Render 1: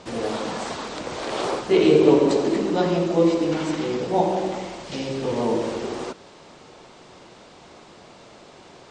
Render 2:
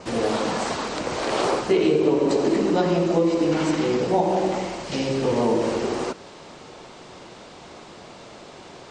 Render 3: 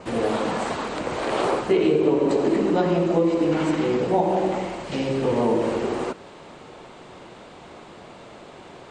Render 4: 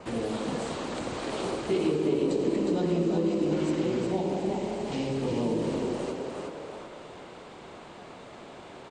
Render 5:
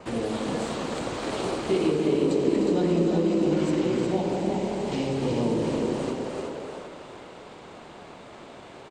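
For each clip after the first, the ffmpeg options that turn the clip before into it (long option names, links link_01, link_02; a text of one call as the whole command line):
ffmpeg -i in.wav -af "adynamicequalizer=threshold=0.00178:dfrequency=3500:dqfactor=6.1:tfrequency=3500:tqfactor=6.1:attack=5:release=100:ratio=0.375:range=2:mode=cutabove:tftype=bell,acompressor=threshold=-20dB:ratio=6,volume=4dB" out.wav
ffmpeg -i in.wav -af "equalizer=frequency=5500:width_type=o:width=0.88:gain=-9.5" out.wav
ffmpeg -i in.wav -filter_complex "[0:a]asplit=6[link_01][link_02][link_03][link_04][link_05][link_06];[link_02]adelay=361,afreqshift=31,volume=-4.5dB[link_07];[link_03]adelay=722,afreqshift=62,volume=-12.5dB[link_08];[link_04]adelay=1083,afreqshift=93,volume=-20.4dB[link_09];[link_05]adelay=1444,afreqshift=124,volume=-28.4dB[link_10];[link_06]adelay=1805,afreqshift=155,volume=-36.3dB[link_11];[link_01][link_07][link_08][link_09][link_10][link_11]amix=inputs=6:normalize=0,acrossover=split=370|3000[link_12][link_13][link_14];[link_13]acompressor=threshold=-34dB:ratio=3[link_15];[link_12][link_15][link_14]amix=inputs=3:normalize=0,volume=-4dB" out.wav
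ffmpeg -i in.wav -filter_complex "[0:a]asplit=2[link_01][link_02];[link_02]aeval=exprs='sgn(val(0))*max(abs(val(0))-0.00794,0)':channel_layout=same,volume=-8dB[link_03];[link_01][link_03]amix=inputs=2:normalize=0,aecho=1:1:301|766:0.398|0.126" out.wav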